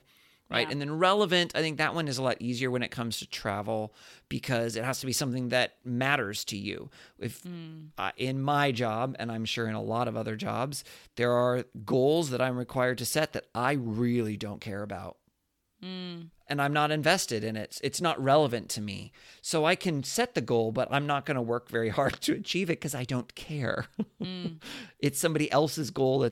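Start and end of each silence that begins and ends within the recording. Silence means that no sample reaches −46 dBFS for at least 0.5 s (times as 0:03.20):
0:15.12–0:15.82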